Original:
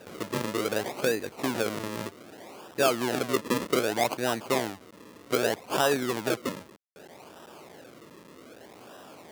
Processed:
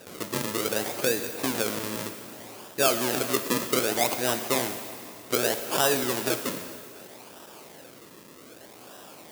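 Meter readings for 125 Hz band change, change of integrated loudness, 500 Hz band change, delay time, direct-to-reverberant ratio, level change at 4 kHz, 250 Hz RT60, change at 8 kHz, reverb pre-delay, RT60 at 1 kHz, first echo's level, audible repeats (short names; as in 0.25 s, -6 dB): 0.0 dB, +2.5 dB, 0.0 dB, none, 8.0 dB, +4.0 dB, 2.6 s, +7.5 dB, 7 ms, 2.6 s, none, none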